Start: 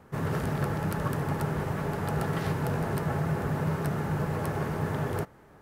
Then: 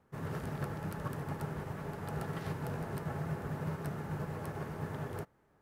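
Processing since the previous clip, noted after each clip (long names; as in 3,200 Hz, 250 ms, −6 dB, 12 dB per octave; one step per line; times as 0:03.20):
expander for the loud parts 1.5 to 1, over −40 dBFS
level −7.5 dB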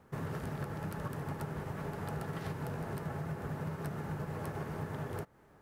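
downward compressor 4 to 1, threshold −45 dBFS, peak gain reduction 11.5 dB
level +8 dB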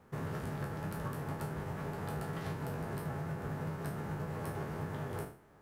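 peak hold with a decay on every bin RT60 0.44 s
level −1.5 dB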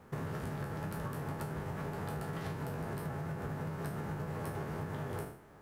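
downward compressor, threshold −40 dBFS, peak gain reduction 6.5 dB
level +4.5 dB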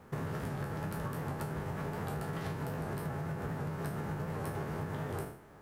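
wow of a warped record 78 rpm, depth 100 cents
level +1.5 dB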